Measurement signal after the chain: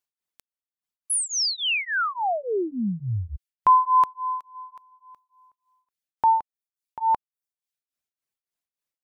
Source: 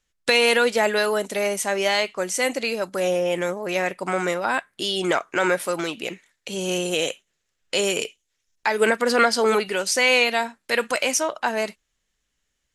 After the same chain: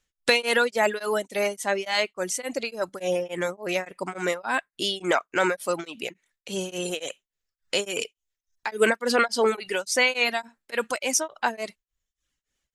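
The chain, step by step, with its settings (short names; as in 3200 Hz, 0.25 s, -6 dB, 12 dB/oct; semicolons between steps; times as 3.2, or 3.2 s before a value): reverb removal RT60 0.63 s; beating tremolo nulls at 3.5 Hz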